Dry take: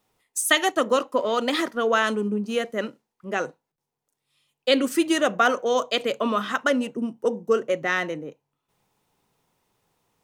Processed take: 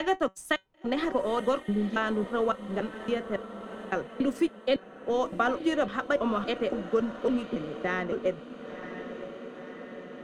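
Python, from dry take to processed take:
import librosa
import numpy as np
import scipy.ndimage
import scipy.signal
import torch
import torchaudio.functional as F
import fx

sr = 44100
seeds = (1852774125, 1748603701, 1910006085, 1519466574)

p1 = fx.block_reorder(x, sr, ms=280.0, group=3)
p2 = fx.low_shelf(p1, sr, hz=150.0, db=-10.5)
p3 = fx.comb_fb(p2, sr, f0_hz=190.0, decay_s=0.16, harmonics='all', damping=0.0, mix_pct=50)
p4 = fx.echo_diffused(p3, sr, ms=1004, feedback_pct=57, wet_db=-13.5)
p5 = np.sign(p4) * np.maximum(np.abs(p4) - 10.0 ** (-38.5 / 20.0), 0.0)
p6 = p4 + (p5 * 10.0 ** (-6.0 / 20.0))
p7 = fx.riaa(p6, sr, side='playback')
p8 = fx.band_squash(p7, sr, depth_pct=40)
y = p8 * 10.0 ** (-4.5 / 20.0)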